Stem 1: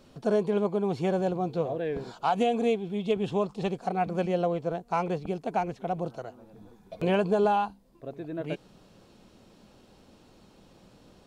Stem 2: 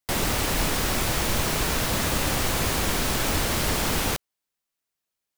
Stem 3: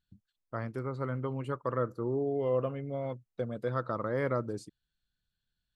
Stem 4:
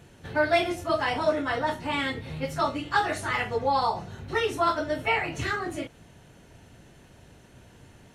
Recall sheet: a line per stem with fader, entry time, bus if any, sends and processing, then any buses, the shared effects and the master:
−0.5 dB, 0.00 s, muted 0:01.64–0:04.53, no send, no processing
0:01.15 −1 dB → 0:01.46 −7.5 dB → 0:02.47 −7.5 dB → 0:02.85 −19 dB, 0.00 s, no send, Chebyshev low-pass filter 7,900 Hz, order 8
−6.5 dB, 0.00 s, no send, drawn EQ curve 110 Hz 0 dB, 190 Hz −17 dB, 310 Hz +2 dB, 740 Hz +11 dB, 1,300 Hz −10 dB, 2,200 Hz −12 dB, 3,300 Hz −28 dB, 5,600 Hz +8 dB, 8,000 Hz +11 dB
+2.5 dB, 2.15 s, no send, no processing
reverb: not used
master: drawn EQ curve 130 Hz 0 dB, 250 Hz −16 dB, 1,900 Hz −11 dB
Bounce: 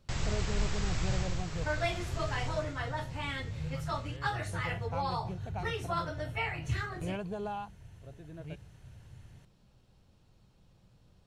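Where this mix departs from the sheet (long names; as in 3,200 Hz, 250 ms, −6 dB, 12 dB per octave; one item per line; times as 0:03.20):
stem 3: missing drawn EQ curve 110 Hz 0 dB, 190 Hz −17 dB, 310 Hz +2 dB, 740 Hz +11 dB, 1,300 Hz −10 dB, 2,200 Hz −12 dB, 3,300 Hz −28 dB, 5,600 Hz +8 dB, 8,000 Hz +11 dB
stem 4: entry 2.15 s → 1.30 s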